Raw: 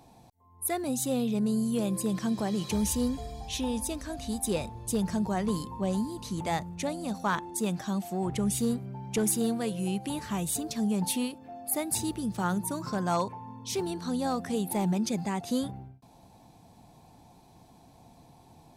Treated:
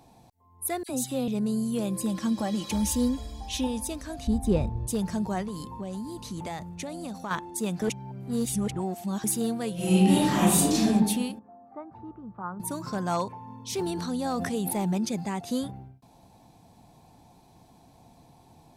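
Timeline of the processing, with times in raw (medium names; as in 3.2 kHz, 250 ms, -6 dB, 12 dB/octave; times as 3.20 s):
0.83–1.28 s: phase dispersion lows, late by 59 ms, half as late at 2.2 kHz
2.02–3.67 s: comb 3.6 ms
4.27–4.87 s: tilt EQ -3.5 dB/octave
5.42–7.31 s: compression, threshold -31 dBFS
7.82–9.24 s: reverse
9.74–10.86 s: reverb throw, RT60 1.1 s, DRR -11 dB
11.39–12.60 s: four-pole ladder low-pass 1.3 kHz, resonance 60%
13.43–15.05 s: decay stretcher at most 22 dB/s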